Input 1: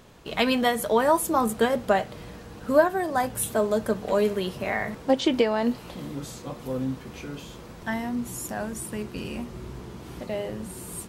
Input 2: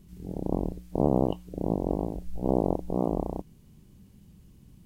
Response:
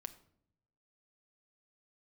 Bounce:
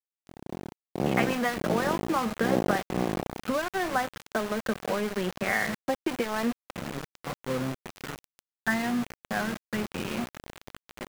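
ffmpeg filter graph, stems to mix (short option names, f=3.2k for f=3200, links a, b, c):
-filter_complex "[0:a]acompressor=threshold=-26dB:ratio=12,adelay=800,volume=-1.5dB[a];[1:a]volume=-5dB[b];[a][b]amix=inputs=2:normalize=0,highpass=200,equalizer=f=280:t=q:w=4:g=-9,equalizer=f=430:t=q:w=4:g=-8,equalizer=f=620:t=q:w=4:g=-9,equalizer=f=940:t=q:w=4:g=-8,lowpass=f=2.2k:w=0.5412,lowpass=f=2.2k:w=1.3066,aeval=exprs='val(0)*gte(abs(val(0)),0.00944)':c=same,dynaudnorm=f=350:g=5:m=10.5dB"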